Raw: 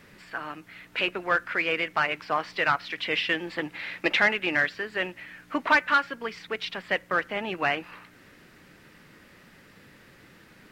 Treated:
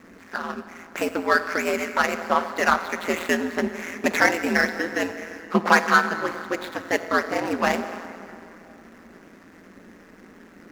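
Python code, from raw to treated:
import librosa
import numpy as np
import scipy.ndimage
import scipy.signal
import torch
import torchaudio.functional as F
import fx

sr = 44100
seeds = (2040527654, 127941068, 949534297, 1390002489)

y = scipy.ndimage.median_filter(x, 15, mode='constant')
y = fx.rev_plate(y, sr, seeds[0], rt60_s=3.0, hf_ratio=0.7, predelay_ms=0, drr_db=9.5)
y = y * np.sin(2.0 * np.pi * 86.0 * np.arange(len(y)) / sr)
y = fx.low_shelf_res(y, sr, hz=160.0, db=-6.5, q=3.0)
y = y * librosa.db_to_amplitude(8.5)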